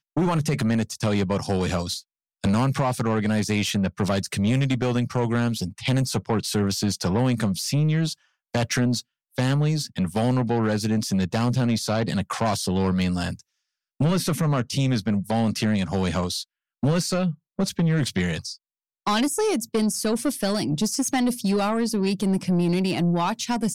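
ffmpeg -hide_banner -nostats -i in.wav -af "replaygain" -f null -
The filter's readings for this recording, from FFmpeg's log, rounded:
track_gain = +6.5 dB
track_peak = 0.110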